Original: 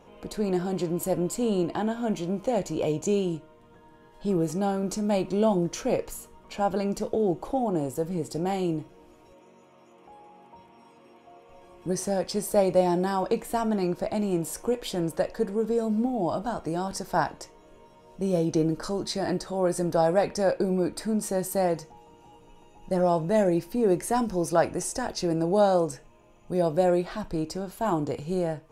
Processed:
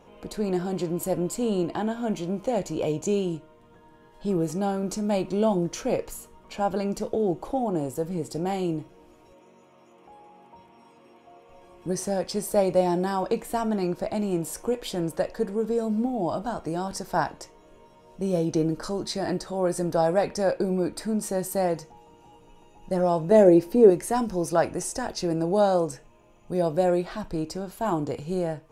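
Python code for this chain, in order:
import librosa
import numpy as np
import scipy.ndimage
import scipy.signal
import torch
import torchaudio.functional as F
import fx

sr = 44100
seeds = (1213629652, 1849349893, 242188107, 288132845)

y = fx.peak_eq(x, sr, hz=420.0, db=10.0, octaves=1.6, at=(23.31, 23.9))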